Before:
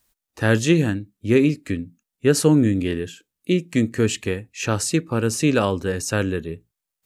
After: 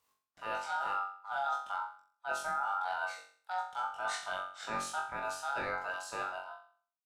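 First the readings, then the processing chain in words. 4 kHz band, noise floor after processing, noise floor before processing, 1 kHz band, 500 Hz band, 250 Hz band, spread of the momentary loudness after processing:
-15.0 dB, under -85 dBFS, -85 dBFS, 0.0 dB, -21.5 dB, -36.5 dB, 9 LU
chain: ending faded out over 2.13 s; reverse; compressor 10:1, threshold -27 dBFS, peak gain reduction 16.5 dB; reverse; ring modulator 1100 Hz; high shelf 5400 Hz -8 dB; flutter echo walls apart 3.7 m, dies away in 0.47 s; gain -5 dB

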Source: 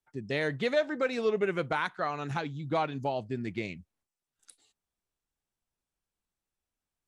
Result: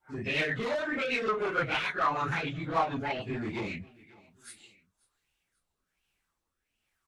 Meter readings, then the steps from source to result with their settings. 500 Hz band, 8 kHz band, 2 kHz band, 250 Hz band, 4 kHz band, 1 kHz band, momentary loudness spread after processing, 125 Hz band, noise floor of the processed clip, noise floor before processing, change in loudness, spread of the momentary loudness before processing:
-3.0 dB, +3.5 dB, +4.0 dB, -0.5 dB, +3.5 dB, +3.0 dB, 9 LU, -0.5 dB, -84 dBFS, under -85 dBFS, +1.0 dB, 7 LU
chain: phase scrambler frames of 0.1 s; in parallel at +3 dB: compressor, threshold -37 dBFS, peak gain reduction 15 dB; on the sum: soft clip -28 dBFS, distortion -9 dB; rotary speaker horn 6.7 Hz, later 1.2 Hz, at 3.39; on a send: feedback echo 0.537 s, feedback 38%, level -23.5 dB; on the sum: LFO bell 1.4 Hz 930–2800 Hz +15 dB

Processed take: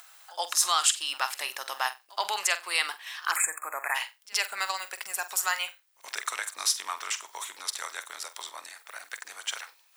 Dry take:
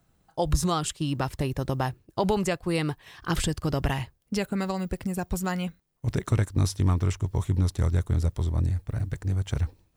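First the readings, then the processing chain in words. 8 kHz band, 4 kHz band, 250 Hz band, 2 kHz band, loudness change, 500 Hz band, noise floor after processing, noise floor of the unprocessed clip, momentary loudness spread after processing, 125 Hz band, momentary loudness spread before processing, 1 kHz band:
+9.5 dB, +8.0 dB, under -30 dB, +7.5 dB, -1.0 dB, -12.5 dB, -63 dBFS, -69 dBFS, 15 LU, under -40 dB, 7 LU, +1.5 dB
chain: in parallel at 0 dB: limiter -19.5 dBFS, peak gain reduction 8 dB; on the sum: Bessel high-pass 1400 Hz, order 4; pre-echo 77 ms -23 dB; upward compressor, threshold -46 dBFS; spectral delete 3.31–3.95, 2600–6700 Hz; on a send: flutter echo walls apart 8 m, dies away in 0.22 s; on the sum: gain +4 dB

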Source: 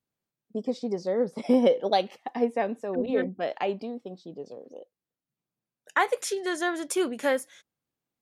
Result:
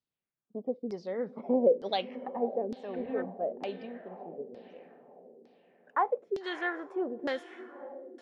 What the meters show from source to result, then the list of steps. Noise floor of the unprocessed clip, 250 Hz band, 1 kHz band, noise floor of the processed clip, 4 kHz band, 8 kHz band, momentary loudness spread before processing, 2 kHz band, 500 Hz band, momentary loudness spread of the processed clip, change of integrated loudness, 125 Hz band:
under -85 dBFS, -7.0 dB, -4.5 dB, under -85 dBFS, -6.0 dB, under -25 dB, 19 LU, -7.0 dB, -4.5 dB, 17 LU, -5.5 dB, -7.5 dB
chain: diffused feedback echo 0.602 s, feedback 46%, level -13 dB; LFO low-pass saw down 1.1 Hz 340–5000 Hz; gain -8.5 dB

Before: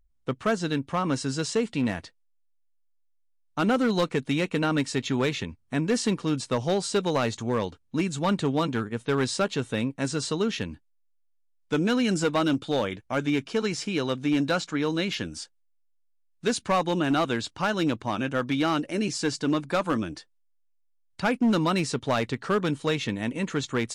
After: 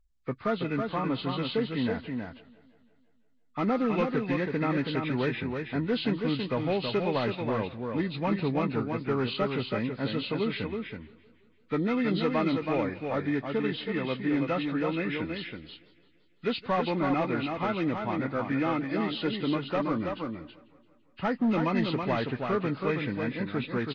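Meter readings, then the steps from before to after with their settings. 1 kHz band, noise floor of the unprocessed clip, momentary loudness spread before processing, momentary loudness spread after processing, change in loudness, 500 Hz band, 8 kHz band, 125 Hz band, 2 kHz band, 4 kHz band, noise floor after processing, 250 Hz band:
-2.5 dB, -67 dBFS, 6 LU, 7 LU, -3.0 dB, -2.5 dB, under -30 dB, -2.5 dB, -3.5 dB, -5.0 dB, -63 dBFS, -2.5 dB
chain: nonlinear frequency compression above 1100 Hz 1.5:1; echo 0.325 s -5 dB; warbling echo 0.169 s, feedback 60%, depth 130 cents, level -21 dB; gain -3.5 dB

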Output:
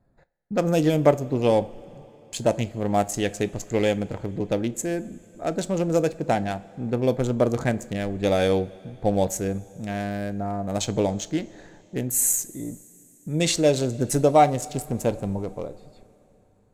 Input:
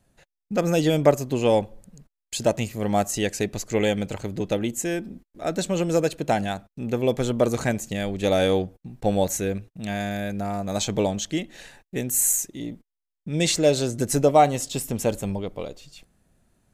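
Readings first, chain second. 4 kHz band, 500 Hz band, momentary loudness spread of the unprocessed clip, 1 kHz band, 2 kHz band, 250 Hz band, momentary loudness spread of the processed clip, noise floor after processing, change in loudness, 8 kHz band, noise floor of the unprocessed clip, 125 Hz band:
-3.0 dB, 0.0 dB, 12 LU, 0.0 dB, -2.0 dB, 0.0 dB, 13 LU, -58 dBFS, 0.0 dB, -1.0 dB, -84 dBFS, +1.0 dB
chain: Wiener smoothing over 15 samples; two-slope reverb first 0.26 s, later 3.7 s, from -18 dB, DRR 13 dB

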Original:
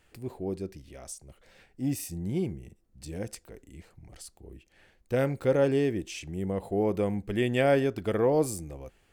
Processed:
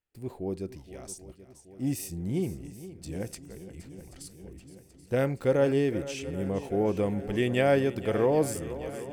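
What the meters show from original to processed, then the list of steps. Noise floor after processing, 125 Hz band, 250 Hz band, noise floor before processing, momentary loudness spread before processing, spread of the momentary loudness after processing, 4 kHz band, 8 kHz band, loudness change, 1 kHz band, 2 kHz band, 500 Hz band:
-55 dBFS, +0.5 dB, +0.5 dB, -66 dBFS, 21 LU, 21 LU, +0.5 dB, +0.5 dB, 0.0 dB, +0.5 dB, +0.5 dB, +0.5 dB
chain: gate -50 dBFS, range -27 dB; on a send: swung echo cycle 0.781 s, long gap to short 1.5:1, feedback 62%, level -15 dB

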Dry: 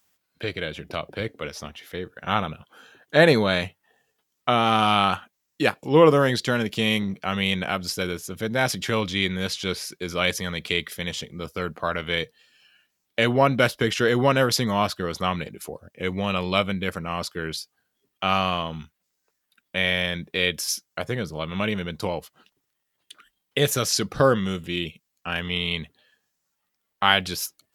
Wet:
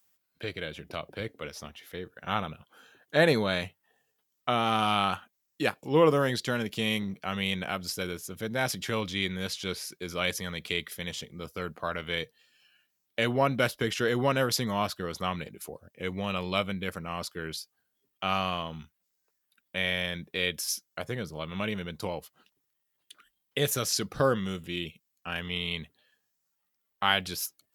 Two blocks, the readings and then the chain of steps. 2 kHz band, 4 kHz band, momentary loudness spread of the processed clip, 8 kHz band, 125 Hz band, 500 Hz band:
-6.5 dB, -6.0 dB, 13 LU, -4.5 dB, -6.5 dB, -6.5 dB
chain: high shelf 11000 Hz +7.5 dB; gain -6.5 dB

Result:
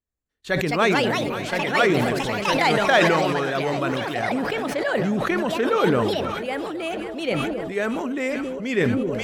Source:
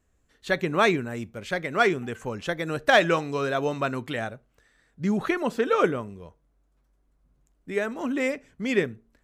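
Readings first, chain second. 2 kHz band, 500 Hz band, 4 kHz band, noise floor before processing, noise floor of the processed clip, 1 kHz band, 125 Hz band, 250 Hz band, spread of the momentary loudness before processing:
+4.0 dB, +4.0 dB, +6.5 dB, -69 dBFS, -38 dBFS, +5.0 dB, +6.0 dB, +5.5 dB, 12 LU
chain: echoes that change speed 0.316 s, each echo +4 st, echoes 2; echo with dull and thin repeats by turns 0.268 s, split 810 Hz, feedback 77%, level -13 dB; gate with hold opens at -38 dBFS; sustainer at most 22 dB/s

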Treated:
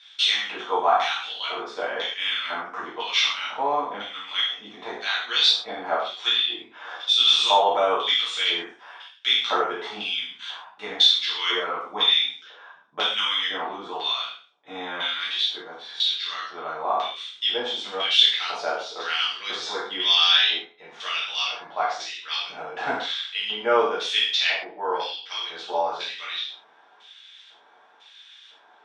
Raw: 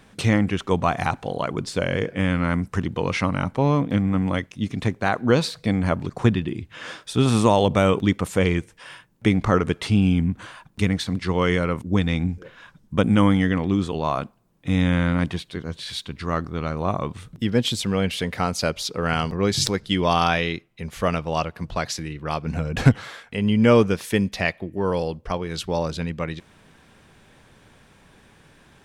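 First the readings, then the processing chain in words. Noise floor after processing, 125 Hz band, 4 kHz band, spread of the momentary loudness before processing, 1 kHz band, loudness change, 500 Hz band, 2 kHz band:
-55 dBFS, under -35 dB, +12.0 dB, 11 LU, +1.0 dB, 0.0 dB, -5.5 dB, +1.0 dB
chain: spectral trails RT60 0.40 s; LFO band-pass square 1 Hz 730–3400 Hz; speaker cabinet 470–8200 Hz, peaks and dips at 550 Hz -9 dB, 1500 Hz +4 dB, 3500 Hz +9 dB, 5600 Hz +6 dB; non-linear reverb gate 0.16 s falling, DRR -7 dB

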